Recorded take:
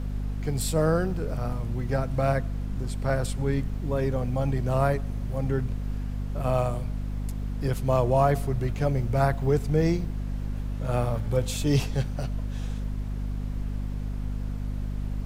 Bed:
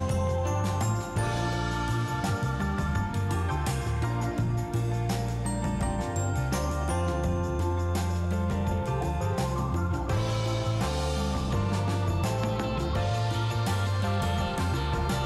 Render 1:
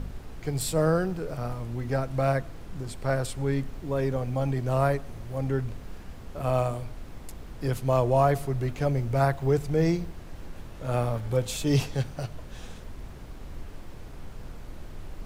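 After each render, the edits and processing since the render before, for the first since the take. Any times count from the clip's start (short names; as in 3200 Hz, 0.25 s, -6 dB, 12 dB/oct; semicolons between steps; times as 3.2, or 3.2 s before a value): de-hum 50 Hz, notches 5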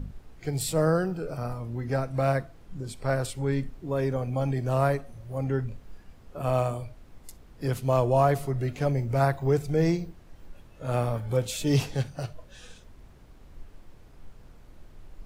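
noise print and reduce 10 dB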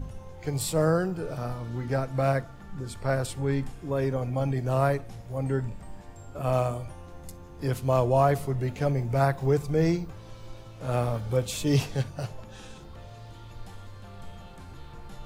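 add bed -18.5 dB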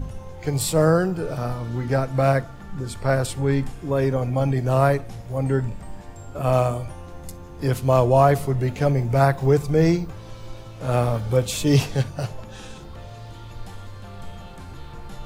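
gain +6 dB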